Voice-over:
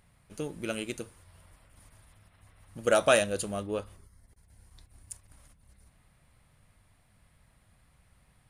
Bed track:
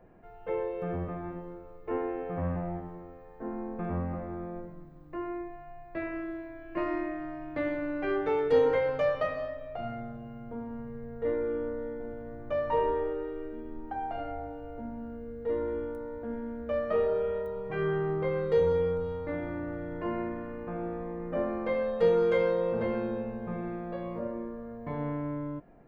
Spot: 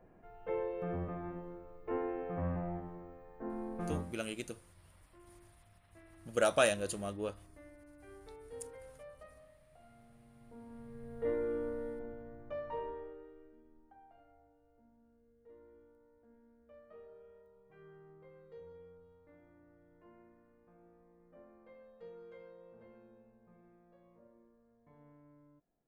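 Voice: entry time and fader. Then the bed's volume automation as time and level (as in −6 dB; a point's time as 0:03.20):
3.50 s, −5.5 dB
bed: 0:03.95 −4.5 dB
0:04.22 −25.5 dB
0:09.86 −25.5 dB
0:11.22 −4.5 dB
0:11.89 −4.5 dB
0:14.24 −28 dB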